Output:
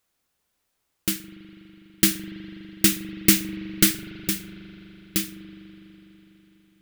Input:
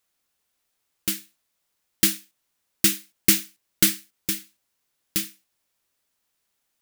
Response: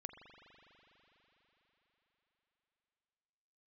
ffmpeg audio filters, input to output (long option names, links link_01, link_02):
-filter_complex "[0:a]asplit=2[link_01][link_02];[1:a]atrim=start_sample=2205,lowshelf=frequency=330:gain=4.5,highshelf=frequency=2700:gain=-10[link_03];[link_02][link_03]afir=irnorm=-1:irlink=0,volume=6dB[link_04];[link_01][link_04]amix=inputs=2:normalize=0,volume=-3dB"